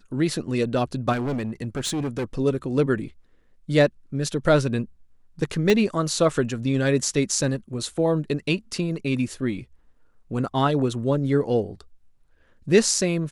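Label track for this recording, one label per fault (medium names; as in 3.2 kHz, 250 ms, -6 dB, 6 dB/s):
1.120000	2.240000	clipped -23 dBFS
5.700000	5.700000	pop -8 dBFS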